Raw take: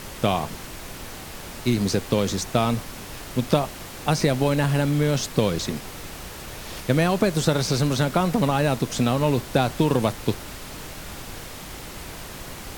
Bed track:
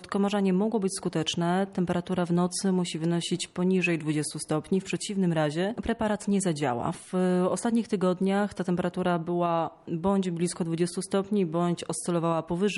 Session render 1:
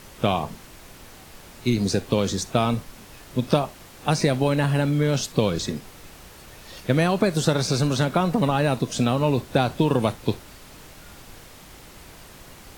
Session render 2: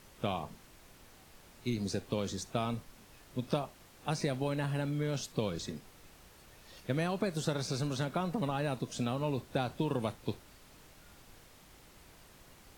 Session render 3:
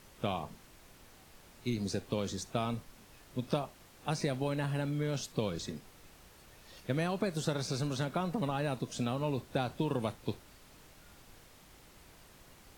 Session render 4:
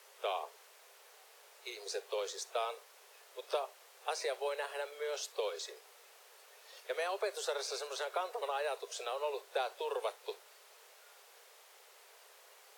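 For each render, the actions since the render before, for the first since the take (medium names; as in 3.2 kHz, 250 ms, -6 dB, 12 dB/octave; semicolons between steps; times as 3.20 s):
noise print and reduce 8 dB
trim -12.5 dB
no audible change
steep high-pass 400 Hz 96 dB/octave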